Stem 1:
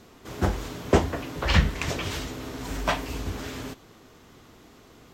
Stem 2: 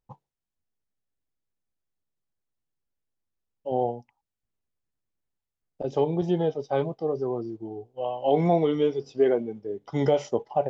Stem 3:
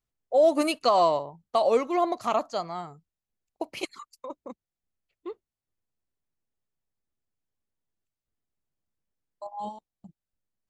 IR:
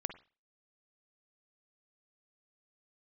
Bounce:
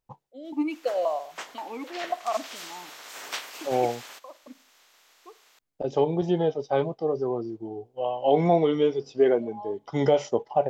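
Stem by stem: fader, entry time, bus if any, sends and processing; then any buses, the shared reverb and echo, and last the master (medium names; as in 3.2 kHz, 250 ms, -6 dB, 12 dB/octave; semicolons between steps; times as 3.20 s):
1.99 s -17.5 dB -> 2.64 s -7.5 dB, 0.45 s, no send, spectral peaks clipped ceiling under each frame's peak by 21 dB; Bessel high-pass 580 Hz, order 2
+2.5 dB, 0.00 s, no send, none
-5.5 dB, 0.00 s, send -4.5 dB, level rider gain up to 7 dB; stepped vowel filter 3.8 Hz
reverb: on, pre-delay 45 ms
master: bass shelf 280 Hz -4.5 dB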